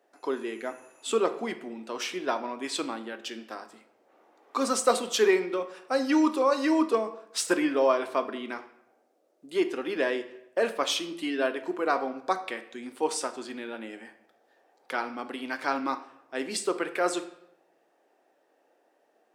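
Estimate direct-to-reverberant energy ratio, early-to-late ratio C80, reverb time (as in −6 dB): 9.0 dB, 15.5 dB, 0.80 s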